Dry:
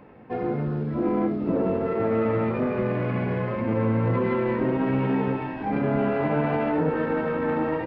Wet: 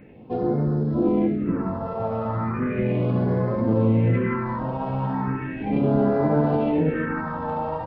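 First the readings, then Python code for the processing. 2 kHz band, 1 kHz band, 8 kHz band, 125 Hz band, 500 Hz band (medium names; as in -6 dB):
-1.5 dB, +1.0 dB, no reading, +4.0 dB, -0.5 dB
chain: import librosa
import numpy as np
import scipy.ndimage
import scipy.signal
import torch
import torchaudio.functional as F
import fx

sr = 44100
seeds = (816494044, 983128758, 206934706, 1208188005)

y = fx.phaser_stages(x, sr, stages=4, low_hz=330.0, high_hz=2600.0, hz=0.36, feedback_pct=25)
y = F.gain(torch.from_numpy(y), 3.5).numpy()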